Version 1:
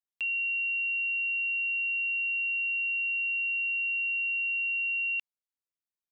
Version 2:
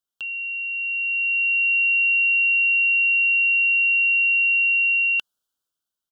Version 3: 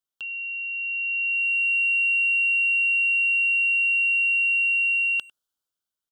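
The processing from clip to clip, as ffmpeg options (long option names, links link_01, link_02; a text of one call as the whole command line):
ffmpeg -i in.wav -af "firequalizer=gain_entry='entry(1000,0);entry(1500,6);entry(2100,-28);entry(3000,5);entry(4300,2)':delay=0.05:min_phase=1,dynaudnorm=framelen=350:gausssize=7:maxgain=11dB,volume=4.5dB" out.wav
ffmpeg -i in.wav -filter_complex "[0:a]asplit=2[link_01][link_02];[link_02]adelay=100,highpass=300,lowpass=3400,asoftclip=type=hard:threshold=-23dB,volume=-20dB[link_03];[link_01][link_03]amix=inputs=2:normalize=0,volume=-3dB" out.wav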